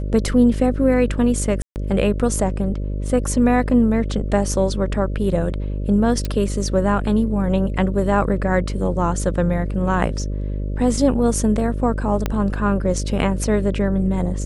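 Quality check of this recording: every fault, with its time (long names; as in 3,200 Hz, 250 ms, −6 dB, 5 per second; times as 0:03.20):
mains buzz 50 Hz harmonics 12 −24 dBFS
0:01.62–0:01.76: drop-out 139 ms
0:06.25: click
0:12.26: click −7 dBFS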